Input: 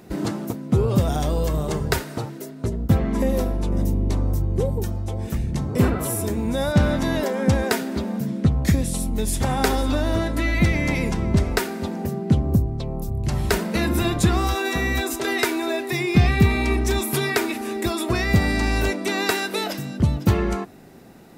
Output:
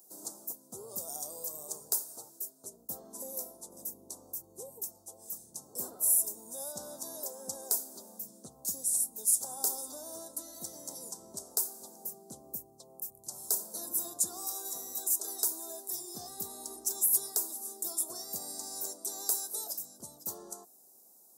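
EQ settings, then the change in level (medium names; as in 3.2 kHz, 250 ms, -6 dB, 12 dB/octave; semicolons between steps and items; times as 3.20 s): high-pass 220 Hz 6 dB/octave; Chebyshev band-stop 720–7100 Hz, order 2; differentiator; +1.5 dB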